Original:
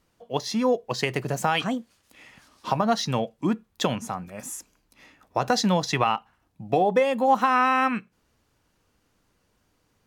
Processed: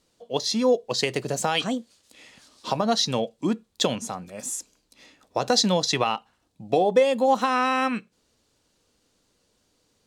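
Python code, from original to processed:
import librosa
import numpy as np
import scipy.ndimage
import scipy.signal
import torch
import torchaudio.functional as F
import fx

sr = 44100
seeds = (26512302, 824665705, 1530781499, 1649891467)

y = fx.graphic_eq_10(x, sr, hz=(250, 500, 4000, 8000), db=(4, 7, 10, 10))
y = F.gain(torch.from_numpy(y), -5.0).numpy()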